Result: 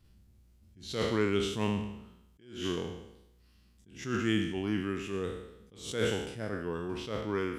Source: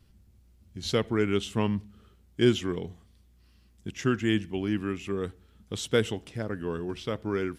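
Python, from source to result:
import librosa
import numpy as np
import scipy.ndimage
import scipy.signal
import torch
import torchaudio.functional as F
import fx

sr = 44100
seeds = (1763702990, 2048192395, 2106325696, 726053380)

y = fx.spec_trails(x, sr, decay_s=0.86)
y = fx.attack_slew(y, sr, db_per_s=110.0)
y = F.gain(torch.from_numpy(y), -4.0).numpy()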